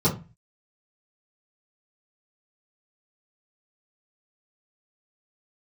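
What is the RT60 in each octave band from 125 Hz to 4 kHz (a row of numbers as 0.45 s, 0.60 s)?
0.50 s, 0.40 s, 0.30 s, 0.30 s, 0.30 s, 0.20 s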